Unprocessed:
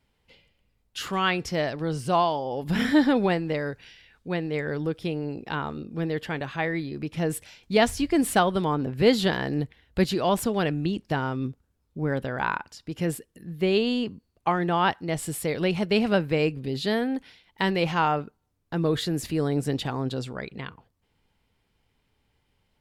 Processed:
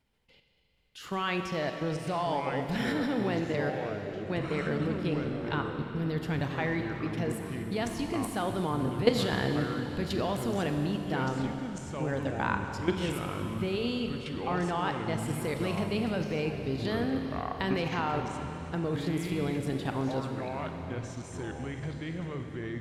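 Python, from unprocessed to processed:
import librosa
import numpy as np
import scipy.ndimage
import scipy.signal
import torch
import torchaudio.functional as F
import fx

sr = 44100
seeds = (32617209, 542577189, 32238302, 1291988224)

y = fx.bass_treble(x, sr, bass_db=9, treble_db=8, at=(5.78, 6.5))
y = fx.level_steps(y, sr, step_db=15)
y = fx.rev_schroeder(y, sr, rt60_s=3.5, comb_ms=30, drr_db=5.0)
y = fx.echo_pitch(y, sr, ms=772, semitones=-5, count=3, db_per_echo=-6.0)
y = F.gain(torch.from_numpy(y), -1.0).numpy()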